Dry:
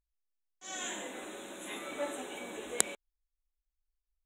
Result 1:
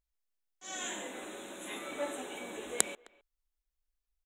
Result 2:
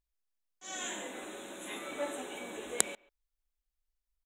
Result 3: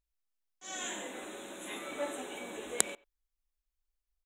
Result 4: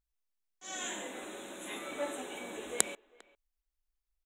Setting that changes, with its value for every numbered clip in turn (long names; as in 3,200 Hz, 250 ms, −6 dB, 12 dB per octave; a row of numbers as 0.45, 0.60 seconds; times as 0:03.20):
far-end echo of a speakerphone, delay time: 260, 140, 90, 400 milliseconds